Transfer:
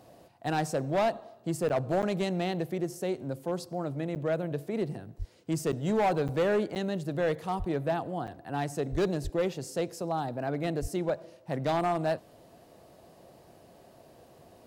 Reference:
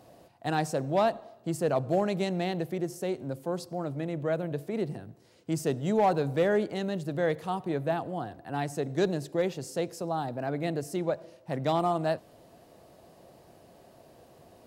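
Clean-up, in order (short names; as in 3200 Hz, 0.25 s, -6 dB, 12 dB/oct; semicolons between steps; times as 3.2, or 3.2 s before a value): clip repair -21.5 dBFS; de-plosive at 5.18/7.58/8.91/9.23/10.81; interpolate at 1.69/2.02/4.15/5.72/6.28/6.75/8.27, 8.3 ms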